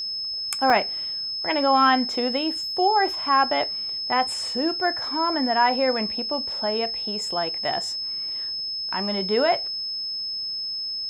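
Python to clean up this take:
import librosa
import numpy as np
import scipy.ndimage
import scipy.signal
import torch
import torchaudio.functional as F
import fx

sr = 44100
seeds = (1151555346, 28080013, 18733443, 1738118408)

y = fx.notch(x, sr, hz=5200.0, q=30.0)
y = fx.fix_interpolate(y, sr, at_s=(0.7,), length_ms=1.1)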